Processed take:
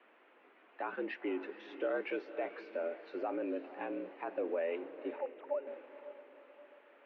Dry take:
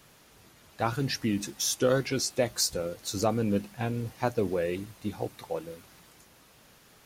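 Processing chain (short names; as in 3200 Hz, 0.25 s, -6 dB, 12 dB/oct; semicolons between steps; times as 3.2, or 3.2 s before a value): 5.18–5.67 sine-wave speech; limiter -21.5 dBFS, peak gain reduction 10.5 dB; mistuned SSB +71 Hz 230–2600 Hz; diffused feedback echo 0.503 s, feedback 44%, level -12.5 dB; gain -3.5 dB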